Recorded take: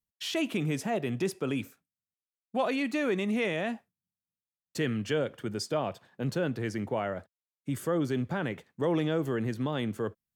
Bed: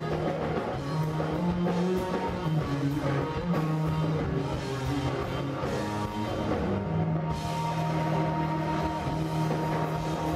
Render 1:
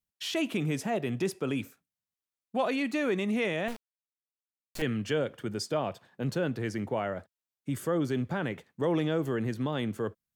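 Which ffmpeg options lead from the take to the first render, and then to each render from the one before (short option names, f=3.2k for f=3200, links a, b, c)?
-filter_complex "[0:a]asettb=1/sr,asplit=3[a][b][c];[a]atrim=end=3.684[d];[b]atrim=start=3.68:end=4.82,asetpts=PTS-STARTPTS,afade=t=in:d=0.004:c=qsin,afade=t=out:st=1.136:d=0.004:c=qsin,acrusher=bits=4:dc=4:mix=0:aa=0.000001[e];[c]atrim=start=4.816[f];[d][e]acrossfade=d=0.004:c1=hsin:c2=qsin[g];[g][f]acrossfade=d=0.004:c1=qsin:c2=hsin"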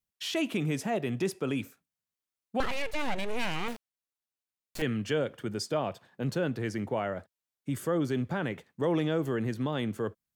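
-filter_complex "[0:a]asettb=1/sr,asplit=3[a][b][c];[a]atrim=end=2.604[d];[b]atrim=start=2.6:end=3.74,asetpts=PTS-STARTPTS,afade=t=in:d=0.004:c=qsin,afade=t=out:st=1.136:d=0.004:c=qsin,aeval=exprs='abs(val(0))':c=same[e];[c]atrim=start=3.736[f];[d][e]acrossfade=d=0.004:c1=hsin:c2=qsin[g];[g][f]acrossfade=d=0.004:c1=qsin:c2=hsin"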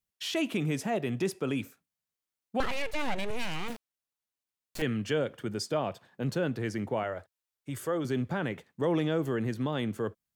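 -filter_complex "[0:a]asettb=1/sr,asplit=3[a][b][c];[a]atrim=end=3.304[d];[b]atrim=start=3.3:end=3.7,asetpts=PTS-STARTPTS,afade=t=in:d=0.004:c=qsin,afade=t=out:st=0.396:d=0.004:c=qsin,acrossover=split=170|3000[e][f][g];[f]acompressor=threshold=-34dB:ratio=6:attack=3.2:release=140:knee=2.83:detection=peak[h];[e][h][g]amix=inputs=3:normalize=0[i];[c]atrim=start=3.696[j];[d][i]acrossfade=d=0.004:c1=hsin:c2=qsin[k];[k][j]acrossfade=d=0.004:c1=qsin:c2=hsin,asettb=1/sr,asplit=3[l][m][n];[l]atrim=end=7.034[o];[m]atrim=start=7.03:end=8.05,asetpts=PTS-STARTPTS,afade=t=in:d=0.004:c=qsin,afade=t=out:st=1.016:d=0.004:c=qsin,equalizer=f=210:t=o:w=0.77:g=-12.5[p];[n]atrim=start=8.046[q];[o][p]acrossfade=d=0.004:c1=hsin:c2=qsin[r];[r][q]acrossfade=d=0.004:c1=qsin:c2=hsin"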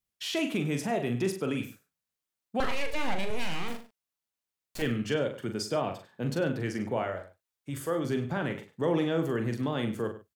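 -filter_complex "[0:a]asplit=2[a][b];[b]adelay=42,volume=-7dB[c];[a][c]amix=inputs=2:normalize=0,asplit=2[d][e];[e]adelay=99.13,volume=-14dB,highshelf=f=4k:g=-2.23[f];[d][f]amix=inputs=2:normalize=0"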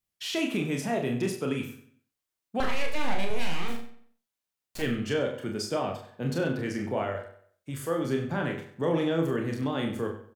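-filter_complex "[0:a]asplit=2[a][b];[b]adelay=30,volume=-6dB[c];[a][c]amix=inputs=2:normalize=0,asplit=2[d][e];[e]adelay=91,lowpass=f=4.7k:p=1,volume=-13dB,asplit=2[f][g];[g]adelay=91,lowpass=f=4.7k:p=1,volume=0.39,asplit=2[h][i];[i]adelay=91,lowpass=f=4.7k:p=1,volume=0.39,asplit=2[j][k];[k]adelay=91,lowpass=f=4.7k:p=1,volume=0.39[l];[d][f][h][j][l]amix=inputs=5:normalize=0"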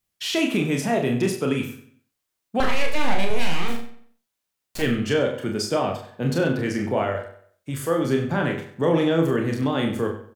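-af "volume=6.5dB"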